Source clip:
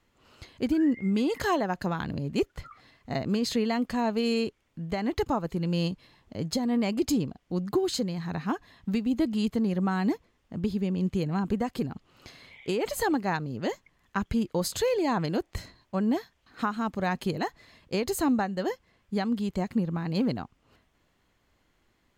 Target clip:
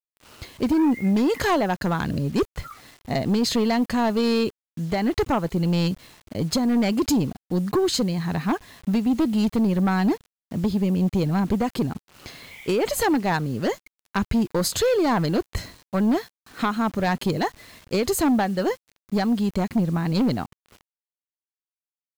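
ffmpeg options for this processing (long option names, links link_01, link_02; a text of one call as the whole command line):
ffmpeg -i in.wav -af "aeval=exprs='0.158*sin(PI/2*1.58*val(0)/0.158)':channel_layout=same,acrusher=bits=7:mix=0:aa=0.000001" out.wav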